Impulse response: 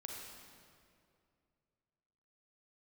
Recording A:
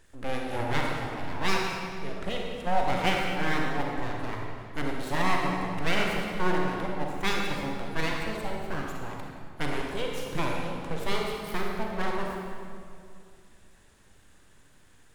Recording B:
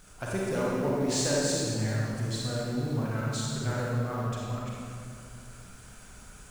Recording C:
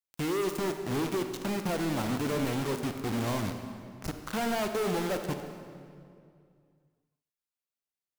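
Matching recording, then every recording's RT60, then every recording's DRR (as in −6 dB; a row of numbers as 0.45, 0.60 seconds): A; 2.4, 2.4, 2.4 seconds; −1.0, −5.0, 6.0 decibels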